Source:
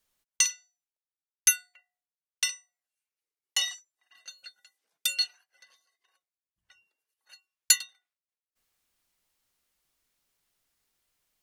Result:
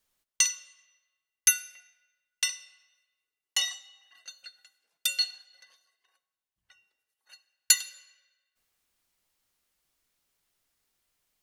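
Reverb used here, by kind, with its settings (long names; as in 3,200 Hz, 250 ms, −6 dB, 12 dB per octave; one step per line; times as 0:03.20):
comb and all-pass reverb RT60 1.3 s, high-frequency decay 0.8×, pre-delay 10 ms, DRR 16 dB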